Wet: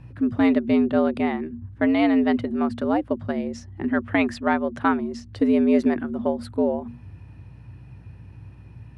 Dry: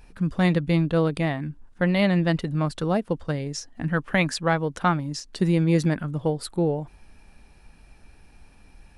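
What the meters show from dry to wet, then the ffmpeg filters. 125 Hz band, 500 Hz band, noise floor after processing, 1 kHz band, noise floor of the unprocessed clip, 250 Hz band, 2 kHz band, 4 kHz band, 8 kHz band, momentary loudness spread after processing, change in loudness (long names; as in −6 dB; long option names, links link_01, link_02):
−12.5 dB, +2.0 dB, −45 dBFS, +1.5 dB, −53 dBFS, +4.0 dB, −0.5 dB, −5.5 dB, below −10 dB, 10 LU, +1.5 dB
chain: -af "bandreject=frequency=50:width_type=h:width=6,bandreject=frequency=100:width_type=h:width=6,bandreject=frequency=150:width_type=h:width=6,afreqshift=87,aeval=exprs='val(0)+0.00224*(sin(2*PI*60*n/s)+sin(2*PI*2*60*n/s)/2+sin(2*PI*3*60*n/s)/3+sin(2*PI*4*60*n/s)/4+sin(2*PI*5*60*n/s)/5)':channel_layout=same,bass=frequency=250:gain=6,treble=frequency=4000:gain=-14"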